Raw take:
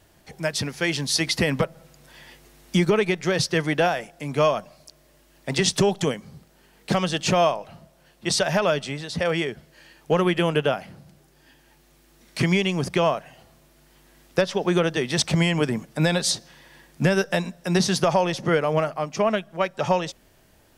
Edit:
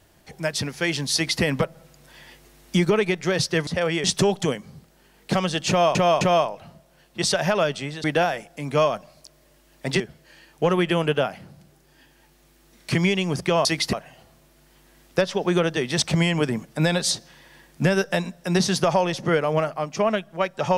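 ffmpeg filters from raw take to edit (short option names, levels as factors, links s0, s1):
-filter_complex "[0:a]asplit=9[s0][s1][s2][s3][s4][s5][s6][s7][s8];[s0]atrim=end=3.672[s9];[s1]atrim=start=9.108:end=9.482[s10];[s2]atrim=start=5.628:end=7.542[s11];[s3]atrim=start=7.278:end=7.542[s12];[s4]atrim=start=7.278:end=9.112[s13];[s5]atrim=start=3.668:end=5.632[s14];[s6]atrim=start=9.478:end=13.132[s15];[s7]atrim=start=1.138:end=1.422[s16];[s8]atrim=start=13.128[s17];[s9][s10]acrossfade=d=0.004:c1=hsin:c2=hsin[s18];[s18][s11]acrossfade=d=0.004:c1=hsin:c2=hsin[s19];[s19][s12]acrossfade=d=0.004:c1=hsin:c2=hsin[s20];[s20][s13]acrossfade=d=0.004:c1=hsin:c2=hsin[s21];[s21][s14]acrossfade=d=0.004:c1=hsin:c2=hsin[s22];[s22][s15]acrossfade=d=0.004:c1=hsin:c2=hsin[s23];[s23][s16]acrossfade=d=0.004:c1=hsin:c2=hsin[s24];[s24][s17]acrossfade=d=0.004:c1=hsin:c2=hsin"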